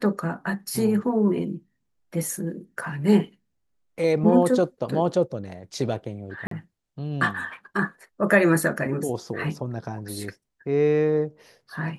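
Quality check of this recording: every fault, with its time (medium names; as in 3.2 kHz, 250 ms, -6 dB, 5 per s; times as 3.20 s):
6.47–6.51 s: dropout 43 ms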